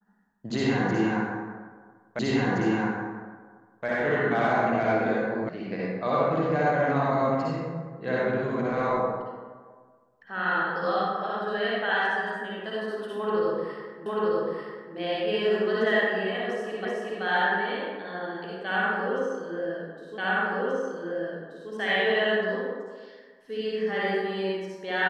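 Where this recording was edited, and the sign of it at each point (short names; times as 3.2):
2.19 repeat of the last 1.67 s
5.49 sound cut off
14.06 repeat of the last 0.89 s
16.85 repeat of the last 0.38 s
20.18 repeat of the last 1.53 s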